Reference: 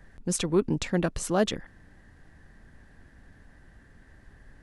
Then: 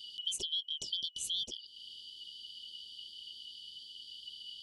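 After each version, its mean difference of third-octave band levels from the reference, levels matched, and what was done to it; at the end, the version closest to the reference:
16.0 dB: band-splitting scrambler in four parts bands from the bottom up 3412
drawn EQ curve 410 Hz 0 dB, 1,700 Hz −30 dB, 3,300 Hz +6 dB
downward compressor 8 to 1, threshold −36 dBFS, peak gain reduction 22.5 dB
low-shelf EQ 370 Hz +6 dB
level +1 dB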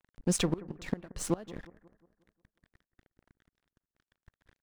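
7.5 dB: high-shelf EQ 7,500 Hz −6 dB
dead-zone distortion −45 dBFS
gate with flip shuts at −17 dBFS, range −25 dB
bucket-brigade delay 179 ms, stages 2,048, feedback 48%, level −18.5 dB
level +2 dB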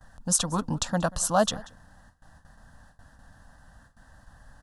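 4.5 dB: noise gate with hold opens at −44 dBFS
low-shelf EQ 280 Hz −8.5 dB
phaser with its sweep stopped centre 920 Hz, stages 4
on a send: single-tap delay 185 ms −22.5 dB
on the sum: level +8.5 dB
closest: third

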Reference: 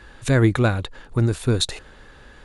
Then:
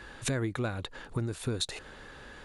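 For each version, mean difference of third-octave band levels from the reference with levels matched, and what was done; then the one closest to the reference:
7.0 dB: downward compressor 6 to 1, threshold −28 dBFS, peak gain reduction 15.5 dB
low-shelf EQ 78 Hz −9 dB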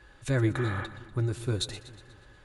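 3.5 dB: healed spectral selection 0:00.60–0:00.83, 490–3,400 Hz before
notch comb filter 230 Hz
echo with a time of its own for lows and highs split 340 Hz, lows 201 ms, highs 121 ms, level −14.5 dB
level −8.5 dB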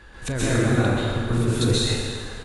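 11.5 dB: downward compressor, threshold −23 dBFS, peak gain reduction 11 dB
double-tracking delay 39 ms −12.5 dB
dense smooth reverb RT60 2 s, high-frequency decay 0.8×, pre-delay 115 ms, DRR −9.5 dB
level −2.5 dB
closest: second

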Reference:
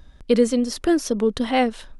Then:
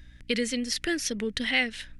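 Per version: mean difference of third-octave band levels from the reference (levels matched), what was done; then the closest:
6.0 dB: drawn EQ curve 140 Hz 0 dB, 1,100 Hz −8 dB, 1,900 Hz +14 dB, 3,800 Hz +5 dB
mains hum 60 Hz, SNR 27 dB
dynamic equaliser 4,100 Hz, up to +6 dB, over −33 dBFS, Q 1
downward compressor 1.5 to 1, threshold −23 dBFS, peak gain reduction 5 dB
level −5.5 dB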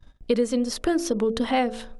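3.0 dB: hum removal 56.54 Hz, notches 13
noise gate −44 dBFS, range −26 dB
downward compressor 3 to 1, threshold −21 dBFS, peak gain reduction 7.5 dB
parametric band 800 Hz +2.5 dB 2.1 octaves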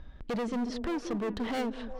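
8.5 dB: low-pass filter 2,900 Hz 12 dB per octave
in parallel at +3 dB: downward compressor, threshold −29 dBFS, peak gain reduction 16.5 dB
on the sum: gain into a clipping stage and back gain 22 dB
echo through a band-pass that steps 180 ms, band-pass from 290 Hz, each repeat 0.7 octaves, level −6 dB
level −8 dB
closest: second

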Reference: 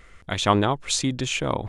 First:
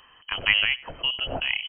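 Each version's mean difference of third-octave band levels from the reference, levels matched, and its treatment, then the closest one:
15.0 dB: high-pass filter 61 Hz
on a send: single-tap delay 93 ms −21 dB
on the sum: voice inversion scrambler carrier 3,100 Hz
low-shelf EQ 110 Hz +4.5 dB
level −2 dB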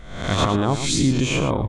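8.5 dB: peak hold with a rise ahead of every peak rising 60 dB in 0.64 s
low-shelf EQ 500 Hz +11 dB
brickwall limiter −7 dBFS, peak gain reduction 9 dB
single-tap delay 111 ms −10 dB
level −2 dB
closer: second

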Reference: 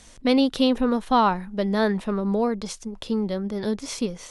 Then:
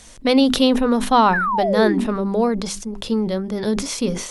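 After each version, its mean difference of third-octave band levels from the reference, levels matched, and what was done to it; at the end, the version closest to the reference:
2.5 dB: sound drawn into the spectrogram fall, 0:01.33–0:02.04, 220–1,800 Hz −25 dBFS
high-shelf EQ 9,900 Hz +6 dB
mains-hum notches 50/100/150/200/250/300/350/400 Hz
level that may fall only so fast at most 69 dB per second
level +4.5 dB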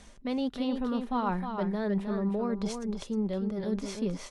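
5.0 dB: high-shelf EQ 3,000 Hz −9.5 dB
comb filter 5 ms, depth 31%
reversed playback
downward compressor 5 to 1, threshold −29 dBFS, peak gain reduction 13 dB
reversed playback
single-tap delay 311 ms −6.5 dB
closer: first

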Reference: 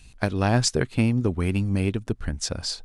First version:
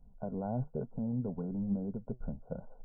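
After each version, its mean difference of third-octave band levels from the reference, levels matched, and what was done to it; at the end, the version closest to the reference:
10.5 dB: brickwall limiter −17 dBFS, peak gain reduction 10 dB
flanger 1.1 Hz, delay 3.6 ms, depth 5.8 ms, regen +73%
linear-phase brick-wall low-pass 1,500 Hz
phaser with its sweep stopped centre 330 Hz, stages 6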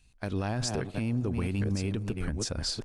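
5.5 dB: delay that plays each chunk backwards 613 ms, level −9 dB
delay with a band-pass on its return 168 ms, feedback 65%, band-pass 640 Hz, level −22 dB
brickwall limiter −18.5 dBFS, peak gain reduction 11.5 dB
noise gate −34 dBFS, range −11 dB
level −2.5 dB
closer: second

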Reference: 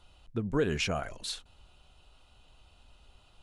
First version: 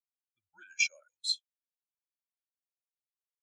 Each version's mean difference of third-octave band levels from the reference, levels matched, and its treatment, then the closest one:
17.5 dB: comb filter 1.2 ms, depth 56%
frequency shifter −110 Hz
resonant band-pass 7,500 Hz, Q 1
every bin expanded away from the loudest bin 2.5 to 1
level +9 dB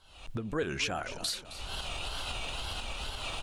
11.5 dB: camcorder AGC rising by 67 dB per second
low-shelf EQ 460 Hz −8 dB
tape wow and flutter 140 cents
on a send: echo with shifted repeats 266 ms, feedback 49%, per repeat −34 Hz, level −14 dB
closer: second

